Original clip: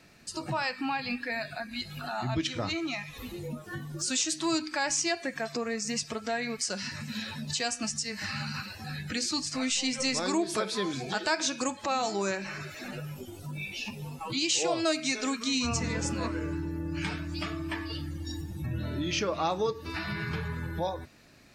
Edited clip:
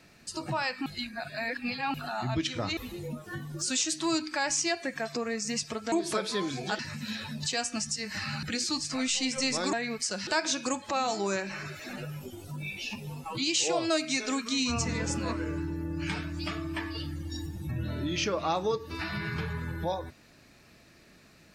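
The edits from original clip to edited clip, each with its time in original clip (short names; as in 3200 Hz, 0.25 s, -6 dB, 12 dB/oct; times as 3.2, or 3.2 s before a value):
0.86–1.94 reverse
2.77–3.17 cut
6.32–6.86 swap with 10.35–11.22
8.5–9.05 cut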